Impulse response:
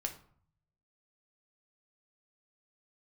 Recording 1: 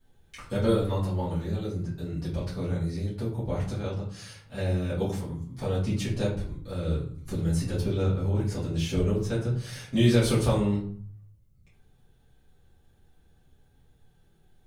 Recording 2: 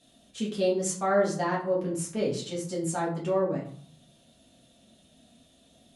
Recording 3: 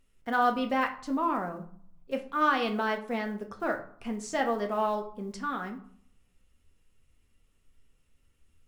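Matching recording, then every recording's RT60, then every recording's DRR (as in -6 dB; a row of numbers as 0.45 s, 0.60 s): 3; 0.55 s, 0.55 s, 0.55 s; -10.5 dB, -5.5 dB, 4.0 dB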